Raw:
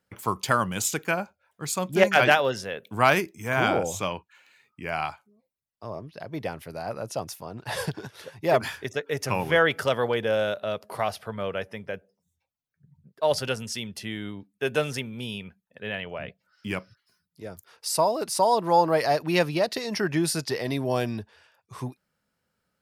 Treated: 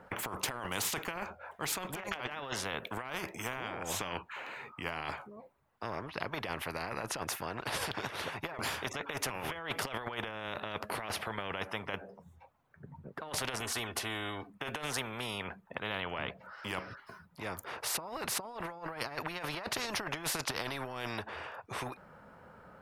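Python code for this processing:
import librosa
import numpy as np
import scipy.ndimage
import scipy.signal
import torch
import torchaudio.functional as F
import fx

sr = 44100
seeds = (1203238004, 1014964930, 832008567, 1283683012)

y = fx.comb(x, sr, ms=2.7, depth=0.94, at=(13.6, 14.5))
y = fx.curve_eq(y, sr, hz=(250.0, 980.0, 5000.0), db=(0, 8, -19))
y = fx.over_compress(y, sr, threshold_db=-30.0, ratio=-1.0)
y = fx.spectral_comp(y, sr, ratio=4.0)
y = y * librosa.db_to_amplitude(-5.5)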